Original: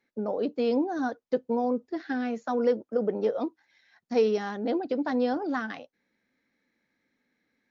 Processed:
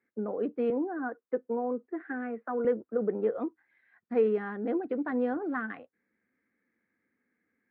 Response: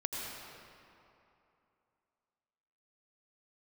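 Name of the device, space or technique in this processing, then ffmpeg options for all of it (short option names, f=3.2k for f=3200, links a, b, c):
bass cabinet: -filter_complex "[0:a]highpass=74,equalizer=f=150:t=q:w=4:g=-8,equalizer=f=270:t=q:w=4:g=-3,equalizer=f=600:t=q:w=4:g=-8,equalizer=f=870:t=q:w=4:g=-8,lowpass=f=2k:w=0.5412,lowpass=f=2k:w=1.3066,asettb=1/sr,asplit=3[a][b][c];[a]atrim=end=0.704[d];[b]atrim=start=0.7:end=2.65,asetpts=PTS-STARTPTS,afade=t=in:d=0.004:c=qsin,afade=t=out:st=1.946:d=0.004:c=qsin,acrossover=split=240 2700:gain=0.251 1 0.0794[e][f][g];[e][f][g]amix=inputs=3:normalize=0[h];[c]atrim=start=2.646[i];[d][h]acrossfade=d=0.004:c1=hsin:c2=qsin[j];[j][i]acrossfade=d=0.004:c1=qsin:c2=hsin"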